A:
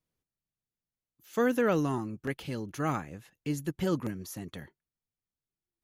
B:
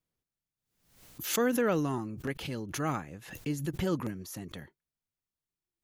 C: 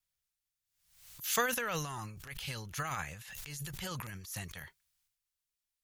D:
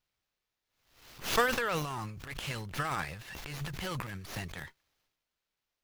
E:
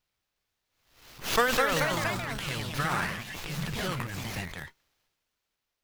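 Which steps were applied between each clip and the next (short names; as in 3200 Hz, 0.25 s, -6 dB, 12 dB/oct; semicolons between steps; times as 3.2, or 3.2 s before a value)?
backwards sustainer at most 83 dB/s; gain -1.5 dB
passive tone stack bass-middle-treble 10-0-10; transient shaper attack -11 dB, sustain +10 dB; wow and flutter 22 cents; gain +5 dB
running maximum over 5 samples; gain +4 dB
echoes that change speed 0.359 s, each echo +2 st, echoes 3; gain +2.5 dB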